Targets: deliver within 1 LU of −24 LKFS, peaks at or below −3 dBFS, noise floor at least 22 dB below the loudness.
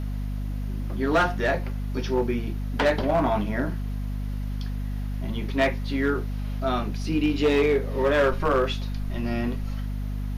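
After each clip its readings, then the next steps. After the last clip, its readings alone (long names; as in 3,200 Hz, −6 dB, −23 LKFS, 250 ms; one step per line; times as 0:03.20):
share of clipped samples 1.2%; peaks flattened at −15.5 dBFS; mains hum 50 Hz; hum harmonics up to 250 Hz; level of the hum −27 dBFS; integrated loudness −26.0 LKFS; sample peak −15.5 dBFS; target loudness −24.0 LKFS
→ clipped peaks rebuilt −15.5 dBFS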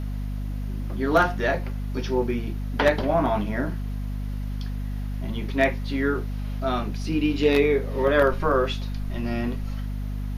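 share of clipped samples 0.0%; mains hum 50 Hz; hum harmonics up to 250 Hz; level of the hum −27 dBFS
→ hum removal 50 Hz, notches 5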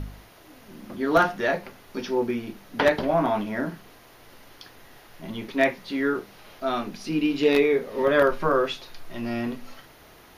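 mains hum none found; integrated loudness −25.0 LKFS; sample peak −6.0 dBFS; target loudness −24.0 LKFS
→ level +1 dB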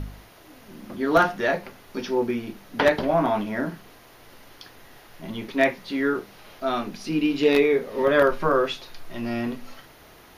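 integrated loudness −24.0 LKFS; sample peak −5.0 dBFS; background noise floor −50 dBFS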